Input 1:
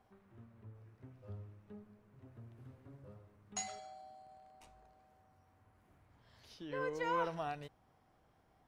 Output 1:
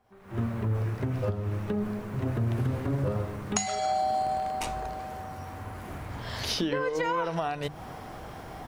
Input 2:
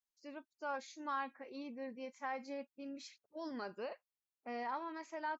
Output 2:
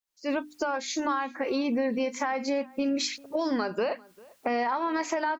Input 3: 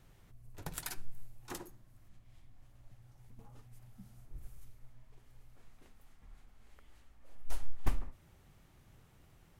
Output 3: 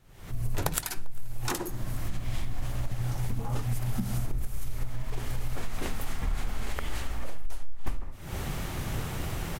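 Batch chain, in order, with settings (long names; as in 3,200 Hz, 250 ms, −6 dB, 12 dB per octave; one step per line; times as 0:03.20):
camcorder AGC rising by 75 dB per second
mains-hum notches 50/100/150/200/250/300 Hz
slap from a distant wall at 68 metres, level −24 dB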